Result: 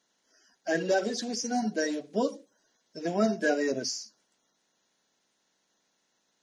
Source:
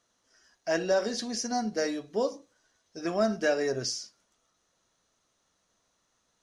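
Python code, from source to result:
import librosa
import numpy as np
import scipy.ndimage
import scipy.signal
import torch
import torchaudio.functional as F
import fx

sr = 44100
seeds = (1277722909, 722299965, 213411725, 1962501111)

y = fx.spec_quant(x, sr, step_db=30)
y = fx.low_shelf_res(y, sr, hz=130.0, db=-13.0, q=1.5)
y = fx.notch(y, sr, hz=1200.0, q=6.9)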